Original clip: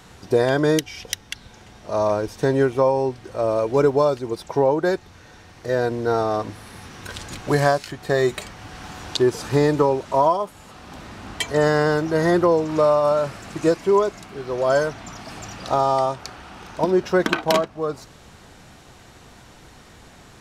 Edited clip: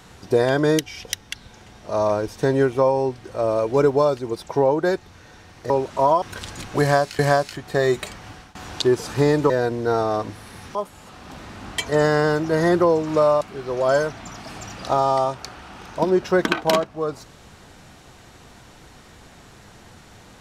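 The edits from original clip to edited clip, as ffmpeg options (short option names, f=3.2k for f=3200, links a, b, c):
-filter_complex "[0:a]asplit=8[a][b][c][d][e][f][g][h];[a]atrim=end=5.702[i];[b]atrim=start=9.848:end=10.372[j];[c]atrim=start=6.948:end=7.922[k];[d]atrim=start=7.538:end=8.9,asetpts=PTS-STARTPTS,afade=t=out:st=1.092:d=0.27:silence=0.0794328[l];[e]atrim=start=8.9:end=9.852,asetpts=PTS-STARTPTS,afade=t=in:d=0.004:c=hsin:silence=0.0794328[m];[f]atrim=start=5.698:end=6.952[n];[g]atrim=start=10.368:end=13.032[o];[h]atrim=start=14.218[p];[i][j]acrossfade=d=0.004:c1=hsin:c2=hsin[q];[q][k]acrossfade=d=0.004:c1=hsin:c2=hsin[r];[l][m]concat=n=2:v=0:a=1[s];[r][s]acrossfade=d=0.004:c1=hsin:c2=hsin[t];[t][n]acrossfade=d=0.004:c1=hsin:c2=hsin[u];[u][o]acrossfade=d=0.004:c1=hsin:c2=hsin[v];[v][p]acrossfade=d=0.004:c1=hsin:c2=hsin"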